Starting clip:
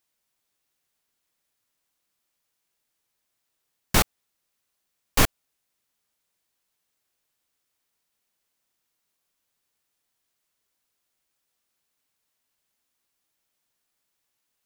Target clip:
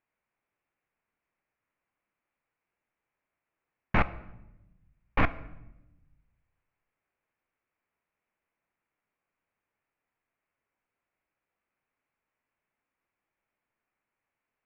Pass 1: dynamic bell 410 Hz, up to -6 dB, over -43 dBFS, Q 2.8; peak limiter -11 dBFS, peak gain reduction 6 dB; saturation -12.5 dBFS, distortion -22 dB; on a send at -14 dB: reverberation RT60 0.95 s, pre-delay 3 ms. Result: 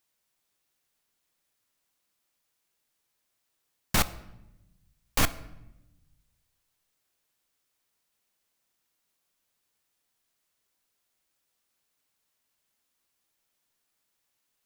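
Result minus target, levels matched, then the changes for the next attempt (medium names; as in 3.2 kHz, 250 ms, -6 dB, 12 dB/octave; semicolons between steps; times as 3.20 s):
2 kHz band -3.0 dB
add after dynamic bell: Chebyshev low-pass 2.4 kHz, order 4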